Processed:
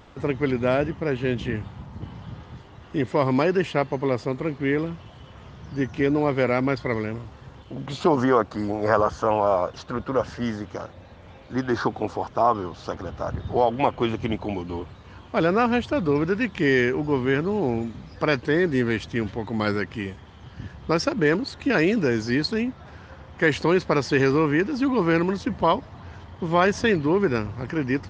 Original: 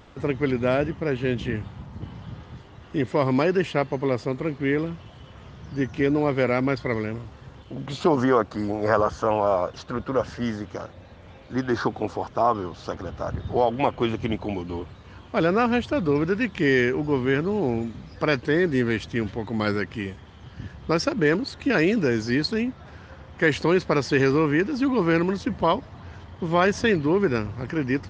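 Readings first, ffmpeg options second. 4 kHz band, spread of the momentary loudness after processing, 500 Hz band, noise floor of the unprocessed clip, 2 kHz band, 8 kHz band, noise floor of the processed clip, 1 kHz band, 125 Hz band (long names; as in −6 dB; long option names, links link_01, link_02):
0.0 dB, 16 LU, +0.5 dB, −47 dBFS, +0.5 dB, can't be measured, −46 dBFS, +1.5 dB, 0.0 dB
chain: -af "equalizer=frequency=900:width_type=o:width=0.77:gain=2"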